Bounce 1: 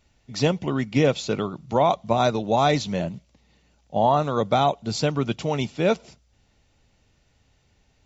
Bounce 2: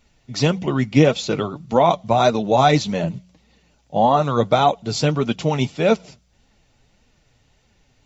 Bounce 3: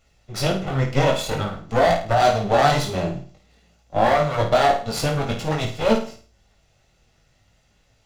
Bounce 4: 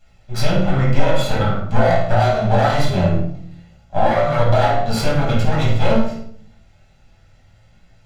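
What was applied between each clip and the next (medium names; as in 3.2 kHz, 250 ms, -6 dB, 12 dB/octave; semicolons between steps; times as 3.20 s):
flange 1.7 Hz, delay 3.6 ms, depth 4.9 ms, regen +38%; de-hum 90.75 Hz, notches 2; trim +8 dB
comb filter that takes the minimum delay 1.5 ms; chorus 0.51 Hz, delay 18 ms, depth 4 ms; on a send: flutter echo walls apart 9 m, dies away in 0.41 s; on the sum: trim +2.5 dB
compression, threshold -19 dBFS, peak gain reduction 8 dB; reverberation RT60 0.55 s, pre-delay 5 ms, DRR -4 dB; trim -2 dB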